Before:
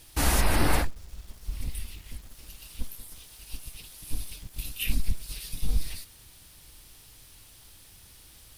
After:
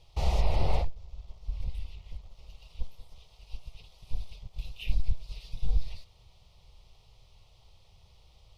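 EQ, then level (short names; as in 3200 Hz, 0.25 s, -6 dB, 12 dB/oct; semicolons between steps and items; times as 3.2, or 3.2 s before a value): dynamic EQ 1200 Hz, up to -7 dB, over -46 dBFS, Q 1.5; air absorption 220 m; fixed phaser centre 670 Hz, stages 4; 0.0 dB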